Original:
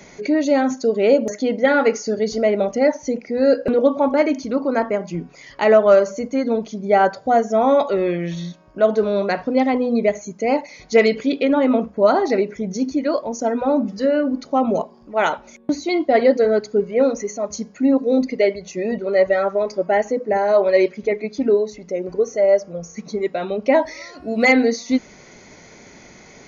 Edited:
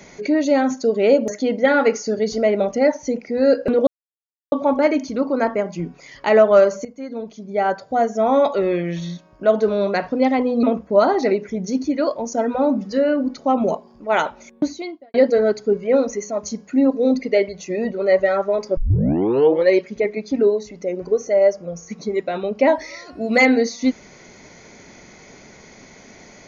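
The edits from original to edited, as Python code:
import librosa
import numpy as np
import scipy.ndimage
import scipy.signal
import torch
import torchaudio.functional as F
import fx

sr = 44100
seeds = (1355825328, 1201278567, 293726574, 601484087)

y = fx.edit(x, sr, fx.insert_silence(at_s=3.87, length_s=0.65),
    fx.fade_in_from(start_s=6.2, length_s=1.65, floor_db=-14.5),
    fx.cut(start_s=9.98, length_s=1.72),
    fx.fade_out_span(start_s=15.71, length_s=0.5, curve='qua'),
    fx.tape_start(start_s=19.84, length_s=0.93), tone=tone)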